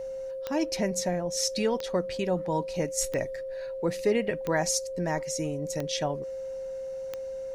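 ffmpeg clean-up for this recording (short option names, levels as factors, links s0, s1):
-af "adeclick=t=4,bandreject=f=530:w=30"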